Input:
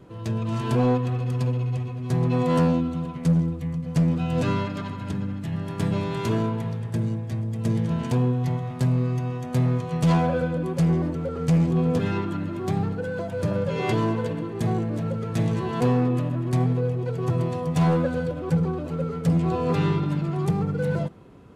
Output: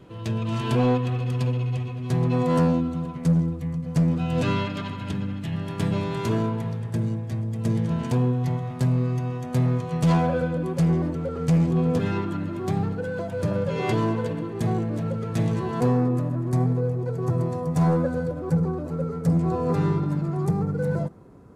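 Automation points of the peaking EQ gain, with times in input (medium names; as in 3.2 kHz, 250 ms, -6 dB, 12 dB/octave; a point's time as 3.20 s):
peaking EQ 3 kHz 1 oct
1.99 s +5 dB
2.51 s -3.5 dB
4.08 s -3.5 dB
4.58 s +6 dB
5.47 s +6 dB
6.22 s -1.5 dB
15.48 s -1.5 dB
16.11 s -13 dB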